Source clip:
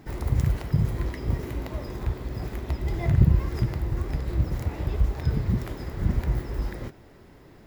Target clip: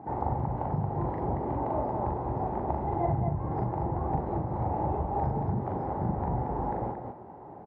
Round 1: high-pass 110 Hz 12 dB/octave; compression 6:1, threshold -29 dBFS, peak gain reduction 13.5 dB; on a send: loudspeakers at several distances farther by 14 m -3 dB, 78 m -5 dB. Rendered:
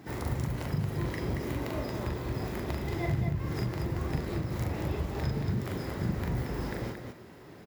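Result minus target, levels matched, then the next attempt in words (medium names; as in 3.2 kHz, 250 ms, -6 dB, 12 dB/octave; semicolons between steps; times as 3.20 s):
1 kHz band -9.5 dB
high-pass 110 Hz 12 dB/octave; compression 6:1, threshold -29 dBFS, peak gain reduction 13.5 dB; resonant low-pass 830 Hz, resonance Q 7; on a send: loudspeakers at several distances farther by 14 m -3 dB, 78 m -5 dB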